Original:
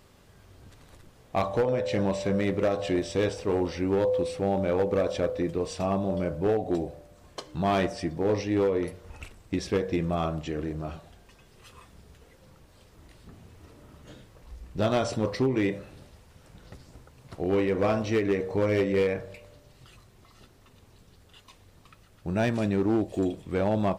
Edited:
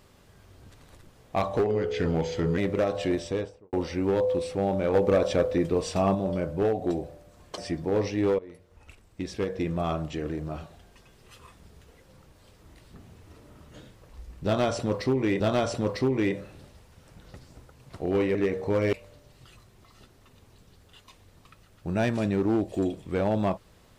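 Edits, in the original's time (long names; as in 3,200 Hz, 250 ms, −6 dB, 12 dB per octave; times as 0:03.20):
0:01.59–0:02.42: play speed 84%
0:02.98–0:03.57: fade out and dull
0:04.78–0:05.99: clip gain +3.5 dB
0:07.42–0:07.91: remove
0:08.72–0:10.27: fade in, from −20 dB
0:14.78–0:15.73: repeat, 2 plays
0:17.73–0:18.22: remove
0:18.80–0:19.33: remove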